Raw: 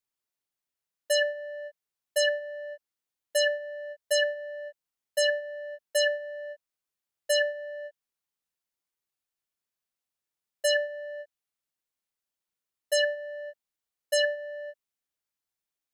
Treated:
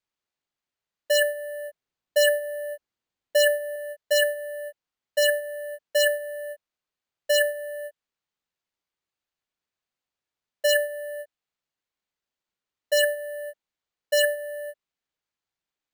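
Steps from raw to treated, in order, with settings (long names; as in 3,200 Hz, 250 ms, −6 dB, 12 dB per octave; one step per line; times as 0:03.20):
0:01.68–0:03.76: low-shelf EQ 470 Hz +5.5 dB
bad sample-rate conversion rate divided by 4×, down filtered, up hold
level +4 dB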